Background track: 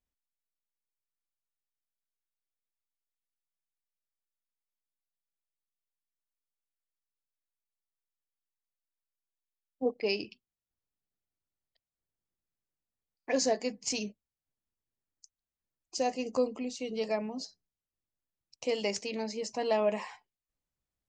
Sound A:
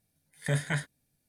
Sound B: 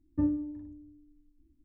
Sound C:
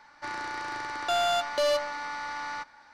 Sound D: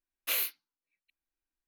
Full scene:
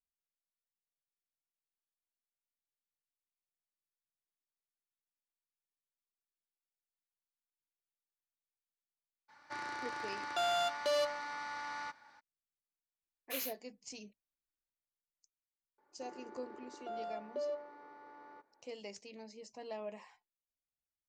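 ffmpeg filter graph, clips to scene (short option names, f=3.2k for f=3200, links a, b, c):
-filter_complex "[3:a]asplit=2[a][b];[0:a]volume=-15.5dB[c];[a]highpass=91[d];[b]bandpass=f=400:t=q:w=5:csg=0[e];[d]atrim=end=2.93,asetpts=PTS-STARTPTS,volume=-7dB,afade=t=in:d=0.02,afade=t=out:st=2.91:d=0.02,adelay=9280[f];[4:a]atrim=end=1.67,asetpts=PTS-STARTPTS,volume=-10.5dB,afade=t=in:d=0.004:c=hsin,afade=t=out:st=1.666:d=0.004:c=hsin,adelay=13030[g];[e]atrim=end=2.93,asetpts=PTS-STARTPTS,afade=t=in:d=0.004:c=hsin,afade=t=out:st=2.926:d=0.004:c=hsin,adelay=15780[h];[c][f][g][h]amix=inputs=4:normalize=0"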